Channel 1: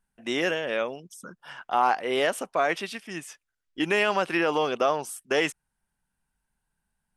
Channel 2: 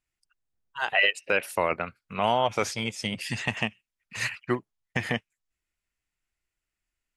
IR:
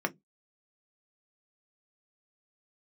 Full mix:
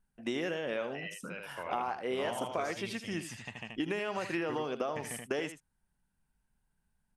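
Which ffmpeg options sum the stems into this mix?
-filter_complex "[0:a]lowshelf=f=450:g=7.5,acompressor=threshold=-26dB:ratio=12,volume=-4.5dB,asplit=2[a][b];[b]volume=-11.5dB[c];[1:a]volume=-16.5dB,afade=t=in:st=1.14:d=0.62:silence=0.473151,asplit=2[d][e];[e]volume=-3.5dB[f];[c][f]amix=inputs=2:normalize=0,aecho=0:1:79:1[g];[a][d][g]amix=inputs=3:normalize=0"

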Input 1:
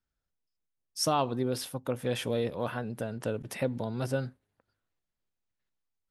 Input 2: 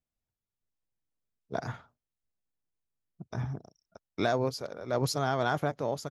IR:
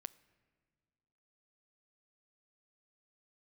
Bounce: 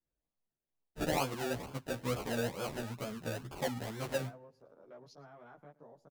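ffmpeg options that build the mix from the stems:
-filter_complex "[0:a]acrusher=samples=33:mix=1:aa=0.000001:lfo=1:lforange=19.8:lforate=2.2,volume=-4dB,asplit=2[a][b];[b]volume=-6.5dB[c];[1:a]afwtdn=0.00891,acompressor=threshold=-37dB:ratio=3,highpass=f=130:w=0.5412,highpass=f=130:w=1.3066,volume=-12.5dB,asplit=2[d][e];[e]volume=-21dB[f];[2:a]atrim=start_sample=2205[g];[c][g]afir=irnorm=-1:irlink=0[h];[f]aecho=0:1:112:1[i];[a][d][h][i]amix=inputs=4:normalize=0,asplit=2[j][k];[k]adelay=11.9,afreqshift=2.3[l];[j][l]amix=inputs=2:normalize=1"

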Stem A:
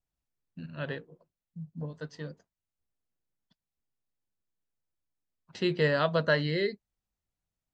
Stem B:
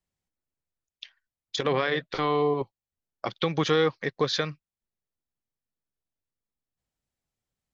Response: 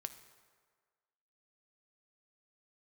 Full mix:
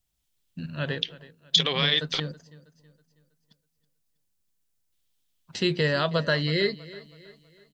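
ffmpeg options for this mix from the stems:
-filter_complex "[0:a]lowshelf=f=220:g=6.5,alimiter=limit=-17.5dB:level=0:latency=1:release=372,volume=2.5dB,asplit=2[a][b];[b]volume=-18.5dB[c];[1:a]equalizer=f=3.3k:w=1.6:g=13.5,dynaudnorm=f=180:g=3:m=13dB,volume=-13dB,asplit=3[d][e][f];[d]atrim=end=2.2,asetpts=PTS-STARTPTS,afade=t=out:st=2.196:d=0.004:c=hsin[g];[e]atrim=start=2.2:end=4.92,asetpts=PTS-STARTPTS,volume=0[h];[f]atrim=start=4.92,asetpts=PTS-STARTPTS,afade=t=in:d=0.004:c=hsin[i];[g][h][i]concat=n=3:v=0:a=1[j];[c]aecho=0:1:323|646|969|1292|1615|1938:1|0.42|0.176|0.0741|0.0311|0.0131[k];[a][j][k]amix=inputs=3:normalize=0,highshelf=f=2.8k:g=12"

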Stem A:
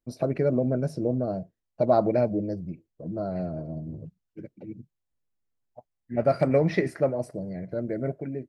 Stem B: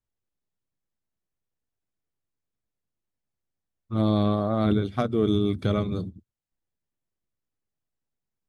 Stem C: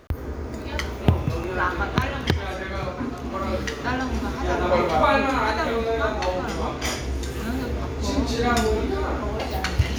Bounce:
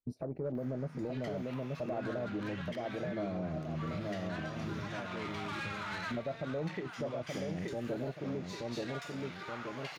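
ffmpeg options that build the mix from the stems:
-filter_complex "[0:a]afwtdn=0.0282,alimiter=limit=-20dB:level=0:latency=1:release=487,volume=2.5dB,asplit=2[a][b];[b]volume=-5dB[c];[1:a]volume=-17dB[d];[2:a]asplit=2[e][f];[f]highpass=f=720:p=1,volume=27dB,asoftclip=type=tanh:threshold=-2.5dB[g];[e][g]amix=inputs=2:normalize=0,lowpass=f=2k:p=1,volume=-6dB,highpass=1.5k,adelay=450,volume=-20dB[h];[c]aecho=0:1:877|1754|2631|3508|4385:1|0.37|0.137|0.0507|0.0187[i];[a][d][h][i]amix=inputs=4:normalize=0,asoftclip=type=tanh:threshold=-16dB,alimiter=level_in=5dB:limit=-24dB:level=0:latency=1:release=497,volume=-5dB"

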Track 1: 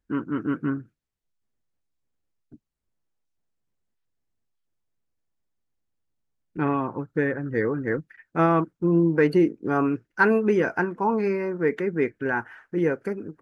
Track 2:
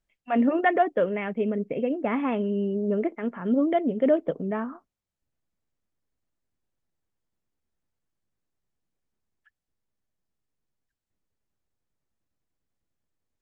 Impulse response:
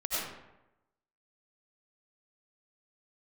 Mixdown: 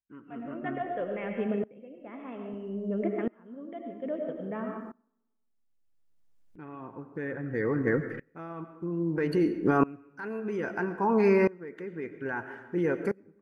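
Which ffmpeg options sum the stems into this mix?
-filter_complex "[0:a]alimiter=limit=-17.5dB:level=0:latency=1:release=39,dynaudnorm=f=110:g=17:m=5dB,volume=0dB,asplit=2[a][b];[b]volume=-17dB[c];[1:a]volume=-4dB,asplit=2[d][e];[e]volume=-8.5dB[f];[2:a]atrim=start_sample=2205[g];[c][f]amix=inputs=2:normalize=0[h];[h][g]afir=irnorm=-1:irlink=0[i];[a][d][i]amix=inputs=3:normalize=0,aeval=exprs='val(0)*pow(10,-24*if(lt(mod(-0.61*n/s,1),2*abs(-0.61)/1000),1-mod(-0.61*n/s,1)/(2*abs(-0.61)/1000),(mod(-0.61*n/s,1)-2*abs(-0.61)/1000)/(1-2*abs(-0.61)/1000))/20)':c=same"

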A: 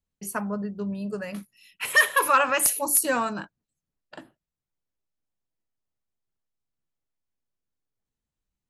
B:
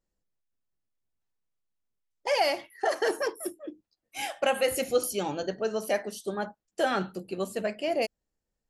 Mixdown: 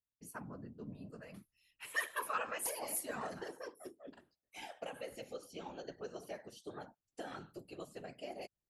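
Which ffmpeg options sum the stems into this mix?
-filter_complex "[0:a]volume=-12dB[a];[1:a]acrossover=split=400|6000[b][c][d];[b]acompressor=threshold=-44dB:ratio=4[e];[c]acompressor=threshold=-38dB:ratio=4[f];[d]acompressor=threshold=-58dB:ratio=4[g];[e][f][g]amix=inputs=3:normalize=0,adelay=400,volume=-3dB[h];[a][h]amix=inputs=2:normalize=0,afftfilt=real='hypot(re,im)*cos(2*PI*random(0))':imag='hypot(re,im)*sin(2*PI*random(1))':win_size=512:overlap=0.75"

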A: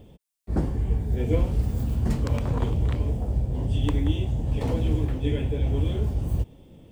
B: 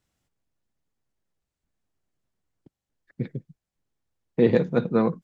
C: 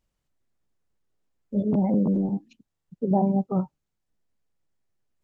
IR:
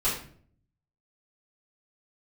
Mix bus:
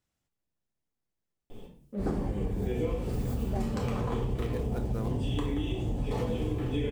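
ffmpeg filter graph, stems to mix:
-filter_complex "[0:a]equalizer=f=72:t=o:w=1.8:g=-13.5,adelay=1500,volume=-2.5dB,asplit=2[a][b];[b]volume=-3.5dB[c];[1:a]acompressor=threshold=-23dB:ratio=2,acrusher=bits=5:mode=log:mix=0:aa=0.000001,volume=-6.5dB[d];[2:a]highpass=f=320:p=1,adynamicsmooth=sensitivity=7:basefreq=530,adelay=400,volume=-6dB[e];[3:a]atrim=start_sample=2205[f];[c][f]afir=irnorm=-1:irlink=0[g];[a][d][e][g]amix=inputs=4:normalize=0,acompressor=threshold=-27dB:ratio=6"

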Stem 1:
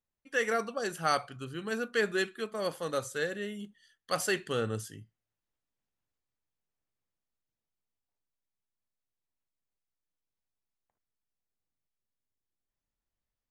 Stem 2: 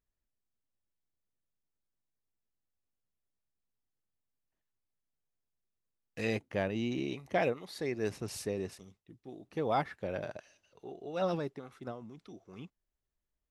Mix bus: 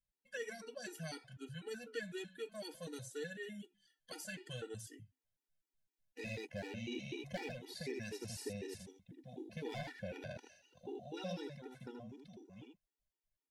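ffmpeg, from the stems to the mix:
-filter_complex "[0:a]aecho=1:1:6.5:0.43,flanger=delay=4.6:depth=3.6:regen=-89:speed=0.62:shape=sinusoidal,volume=-0.5dB,asplit=2[a][b];[1:a]dynaudnorm=f=210:g=17:m=9.5dB,asoftclip=type=hard:threshold=-15dB,volume=-7dB,asplit=2[c][d];[d]volume=-4.5dB[e];[b]apad=whole_len=595740[f];[c][f]sidechaincompress=threshold=-54dB:ratio=3:attack=7.8:release=1500[g];[e]aecho=0:1:79:1[h];[a][g][h]amix=inputs=3:normalize=0,acrossover=split=340|1900[i][j][k];[i]acompressor=threshold=-43dB:ratio=4[l];[j]acompressor=threshold=-46dB:ratio=4[m];[k]acompressor=threshold=-44dB:ratio=4[n];[l][m][n]amix=inputs=3:normalize=0,asuperstop=centerf=1200:order=4:qfactor=3.6,afftfilt=real='re*gt(sin(2*PI*4*pts/sr)*(1-2*mod(floor(b*sr/1024/250),2)),0)':imag='im*gt(sin(2*PI*4*pts/sr)*(1-2*mod(floor(b*sr/1024/250),2)),0)':win_size=1024:overlap=0.75"

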